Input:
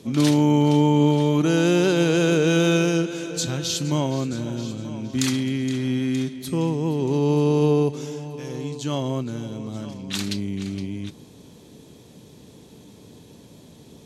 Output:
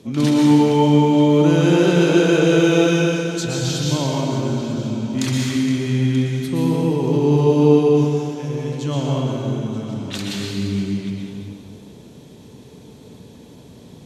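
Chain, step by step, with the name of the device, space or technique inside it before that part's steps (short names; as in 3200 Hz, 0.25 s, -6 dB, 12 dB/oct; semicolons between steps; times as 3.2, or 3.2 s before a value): swimming-pool hall (reverb RT60 2.1 s, pre-delay 0.111 s, DRR -3 dB; high shelf 4700 Hz -5 dB)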